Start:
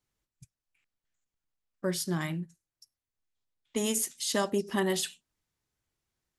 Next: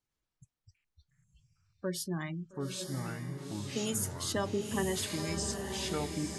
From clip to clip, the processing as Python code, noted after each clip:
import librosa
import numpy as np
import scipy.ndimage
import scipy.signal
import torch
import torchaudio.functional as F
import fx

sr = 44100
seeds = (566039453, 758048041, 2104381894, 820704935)

y = fx.spec_gate(x, sr, threshold_db=-25, keep='strong')
y = fx.echo_pitch(y, sr, ms=114, semitones=-5, count=3, db_per_echo=-3.0)
y = fx.echo_diffused(y, sr, ms=901, feedback_pct=51, wet_db=-5.5)
y = y * librosa.db_to_amplitude(-4.5)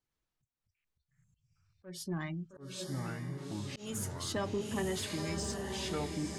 y = 10.0 ** (-26.5 / 20.0) * np.tanh(x / 10.0 ** (-26.5 / 20.0))
y = fx.auto_swell(y, sr, attack_ms=232.0)
y = fx.high_shelf(y, sr, hz=7700.0, db=-7.0)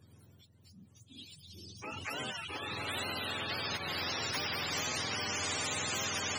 y = fx.octave_mirror(x, sr, pivot_hz=690.0)
y = fx.spectral_comp(y, sr, ratio=10.0)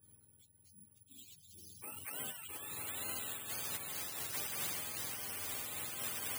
y = x + 10.0 ** (-12.5 / 20.0) * np.pad(x, (int(1133 * sr / 1000.0), 0))[:len(x)]
y = (np.kron(scipy.signal.resample_poly(y, 1, 4), np.eye(4)[0]) * 4)[:len(y)]
y = fx.am_noise(y, sr, seeds[0], hz=5.7, depth_pct=60)
y = y * librosa.db_to_amplitude(-7.5)